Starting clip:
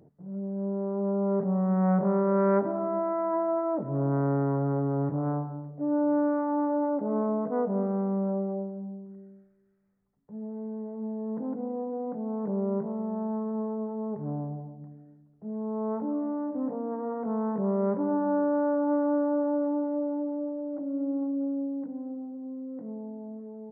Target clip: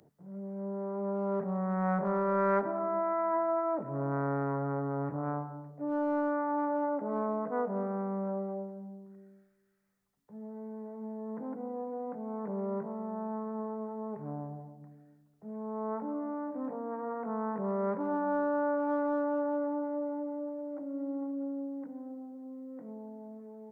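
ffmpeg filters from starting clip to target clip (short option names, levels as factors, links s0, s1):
-filter_complex "[0:a]tiltshelf=f=970:g=-8,acrossover=split=170|400[s0][s1][s2];[s1]volume=50.1,asoftclip=hard,volume=0.02[s3];[s0][s3][s2]amix=inputs=3:normalize=0"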